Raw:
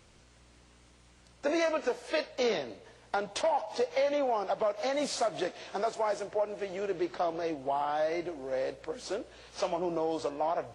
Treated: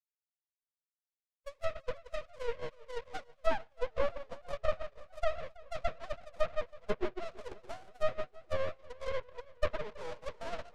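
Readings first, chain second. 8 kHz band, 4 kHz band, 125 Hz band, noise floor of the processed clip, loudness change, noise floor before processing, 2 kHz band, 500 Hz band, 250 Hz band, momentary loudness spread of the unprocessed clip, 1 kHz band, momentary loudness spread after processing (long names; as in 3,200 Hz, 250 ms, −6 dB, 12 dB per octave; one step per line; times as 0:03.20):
below −15 dB, −9.5 dB, +1.5 dB, below −85 dBFS, −7.0 dB, −60 dBFS, −5.0 dB, −6.5 dB, −13.0 dB, 7 LU, −9.5 dB, 11 LU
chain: three sine waves on the formant tracks
low-shelf EQ 300 Hz +3.5 dB
on a send: feedback echo with a low-pass in the loop 485 ms, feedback 19%, low-pass 2,200 Hz, level −6.5 dB
on the sum: reverb whose tail is shaped and stops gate 190 ms rising, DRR 5.5 dB
in parallel at −12 dB: fuzz pedal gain 44 dB, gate −44 dBFS
on the sum: speech leveller within 4 dB 0.5 s
noise gate −20 dBFS, range −50 dB
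half-wave rectification
dynamic equaliser 800 Hz, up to −5 dB, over −41 dBFS, Q 1.1
treble cut that deepens with the level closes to 2,800 Hz, closed at −30 dBFS
feedback echo with a swinging delay time 326 ms, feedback 66%, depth 64 cents, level −22.5 dB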